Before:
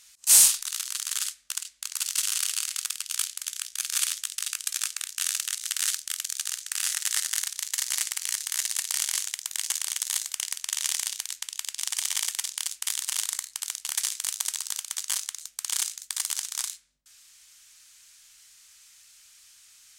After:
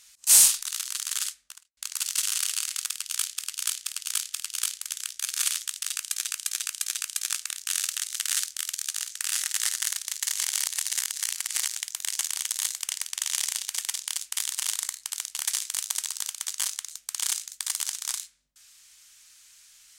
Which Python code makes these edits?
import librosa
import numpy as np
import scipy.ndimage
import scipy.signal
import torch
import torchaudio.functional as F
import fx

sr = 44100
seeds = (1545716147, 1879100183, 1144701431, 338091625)

y = fx.studio_fade_out(x, sr, start_s=1.27, length_s=0.5)
y = fx.edit(y, sr, fx.repeat(start_s=2.89, length_s=0.48, count=4),
    fx.repeat(start_s=4.47, length_s=0.35, count=4),
    fx.reverse_span(start_s=7.83, length_s=1.43),
    fx.cut(start_s=11.25, length_s=0.99), tone=tone)